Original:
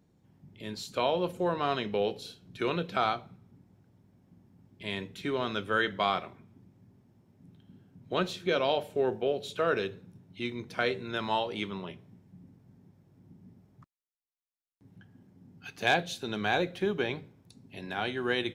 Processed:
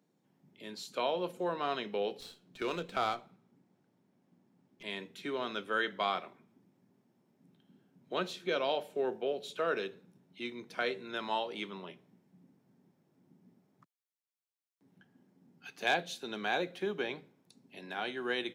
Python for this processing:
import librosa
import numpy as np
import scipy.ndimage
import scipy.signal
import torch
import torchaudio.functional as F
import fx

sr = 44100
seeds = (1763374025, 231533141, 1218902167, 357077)

y = scipy.signal.sosfilt(scipy.signal.bessel(8, 240.0, 'highpass', norm='mag', fs=sr, output='sos'), x)
y = fx.running_max(y, sr, window=3, at=(2.2, 4.83))
y = F.gain(torch.from_numpy(y), -4.0).numpy()